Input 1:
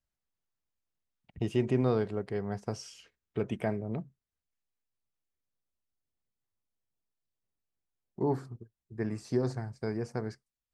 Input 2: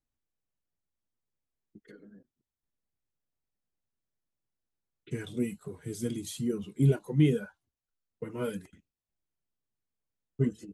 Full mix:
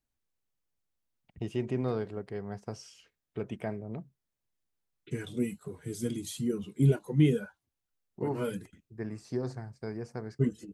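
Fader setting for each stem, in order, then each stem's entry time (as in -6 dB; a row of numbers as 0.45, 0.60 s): -4.0, 0.0 dB; 0.00, 0.00 s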